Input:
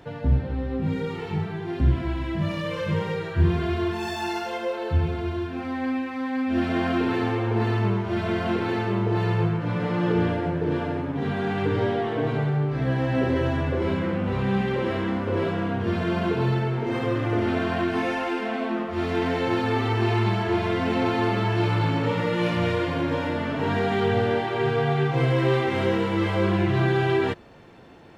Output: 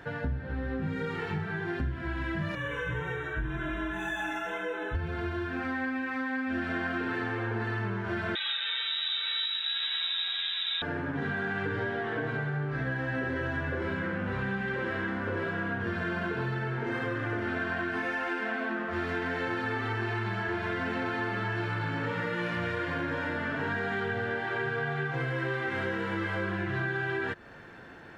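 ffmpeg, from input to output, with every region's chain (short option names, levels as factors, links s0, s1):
-filter_complex "[0:a]asettb=1/sr,asplit=3[s0][s1][s2];[s0]atrim=end=2.554[s3];[s1]atrim=start=2.55:end=4.95,asetpts=PTS-STARTPTS,afade=t=in:d=0.004:c=qsin,afade=t=out:st=2.396:d=0.004:c=qsin,flanger=delay=5.1:depth=5.6:regen=79:speed=1.9:shape=sinusoidal,afreqshift=-32,asuperstop=centerf=4700:order=20:qfactor=2.9[s4];[s2]atrim=start=4.946[s5];[s3][s4]acrossfade=d=0.004:c1=hsin:c2=qsin[s6];[s6][s5]acrossfade=d=0.004:c1=qsin:c2=hsin,asettb=1/sr,asplit=3[s7][s8][s9];[s7]atrim=end=8.354[s10];[s8]atrim=start=8.35:end=10.82,asetpts=PTS-STARTPTS,afade=t=in:d=0.004:c=qsin,afade=t=out:st=2.466:d=0.004:c=qsin,aecho=1:1:627:0.531,atrim=end_sample=108927,lowpass=f=3400:t=q:w=0.5098,lowpass=f=3400:t=q:w=0.6013,lowpass=f=3400:t=q:w=0.9,lowpass=f=3400:t=q:w=2.563,afreqshift=-4000[s11];[s9]atrim=start=10.816[s12];[s10][s11]acrossfade=d=0.004:c1=hsin:c2=qsin[s13];[s13][s12]acrossfade=d=0.004:c1=qsin:c2=hsin,equalizer=f=1600:w=2.7:g=14,acompressor=threshold=0.0447:ratio=6,volume=0.794"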